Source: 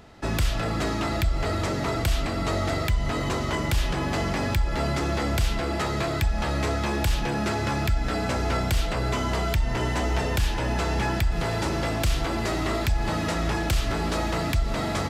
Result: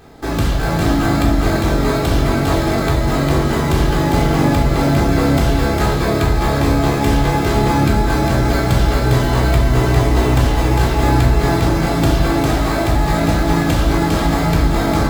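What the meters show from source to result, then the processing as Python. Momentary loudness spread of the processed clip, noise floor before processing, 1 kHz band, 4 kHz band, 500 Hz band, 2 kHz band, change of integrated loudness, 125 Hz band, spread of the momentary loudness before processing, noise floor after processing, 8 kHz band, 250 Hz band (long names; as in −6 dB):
2 LU, −28 dBFS, +10.0 dB, +6.5 dB, +10.5 dB, +8.0 dB, +10.5 dB, +11.5 dB, 1 LU, −18 dBFS, +7.0 dB, +13.0 dB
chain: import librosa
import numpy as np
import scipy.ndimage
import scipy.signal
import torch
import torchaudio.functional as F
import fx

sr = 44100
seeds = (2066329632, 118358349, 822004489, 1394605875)

p1 = fx.low_shelf(x, sr, hz=87.0, db=-9.0)
p2 = fx.sample_hold(p1, sr, seeds[0], rate_hz=2900.0, jitter_pct=0)
p3 = p1 + (p2 * 10.0 ** (0.5 / 20.0))
p4 = p3 + 10.0 ** (-3.5 / 20.0) * np.pad(p3, (int(403 * sr / 1000.0), 0))[:len(p3)]
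p5 = fx.room_shoebox(p4, sr, seeds[1], volume_m3=830.0, walls='furnished', distance_m=3.7)
y = p5 * 10.0 ** (-1.5 / 20.0)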